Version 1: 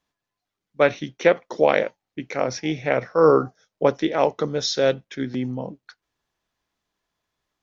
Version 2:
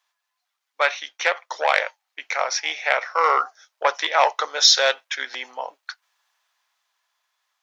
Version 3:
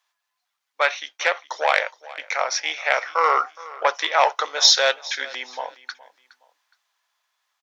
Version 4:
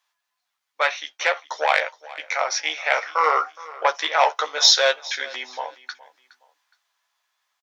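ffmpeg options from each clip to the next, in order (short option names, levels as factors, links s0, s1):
-af "acontrast=77,highpass=f=820:w=0.5412,highpass=f=820:w=1.3066,dynaudnorm=f=250:g=13:m=3.76"
-af "aecho=1:1:417|834:0.106|0.0307"
-filter_complex "[0:a]asplit=2[s0][s1];[s1]adelay=13,volume=0.473[s2];[s0][s2]amix=inputs=2:normalize=0,volume=0.891"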